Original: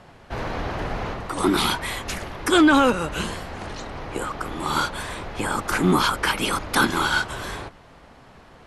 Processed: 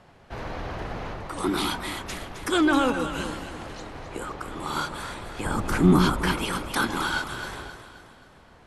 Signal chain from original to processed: 5.45–6.33 low shelf 350 Hz +11.5 dB; echo with dull and thin repeats by turns 0.132 s, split 890 Hz, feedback 68%, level -6.5 dB; gain -6 dB

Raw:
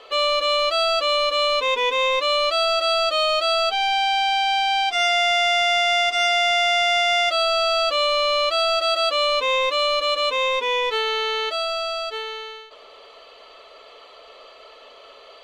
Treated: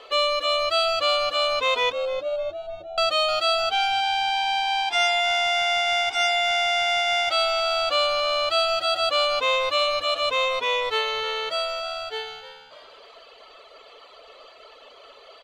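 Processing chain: 1.92–2.98 steep low-pass 620 Hz 96 dB/oct; reverb removal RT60 0.9 s; frequency-shifting echo 0.307 s, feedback 45%, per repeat +79 Hz, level -14.5 dB

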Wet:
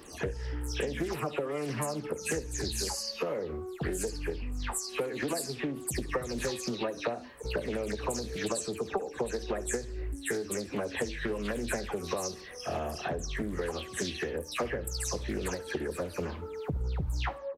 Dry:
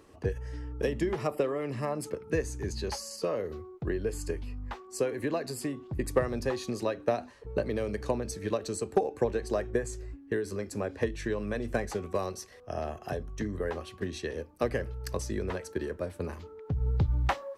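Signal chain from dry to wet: spectral delay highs early, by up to 0.191 s; high shelf 3200 Hz +10 dB; compressor 4:1, threshold -38 dBFS, peak gain reduction 15.5 dB; on a send: feedback echo 70 ms, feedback 30%, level -19 dB; on the sum: Doppler distortion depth 0.51 ms; gain +7 dB

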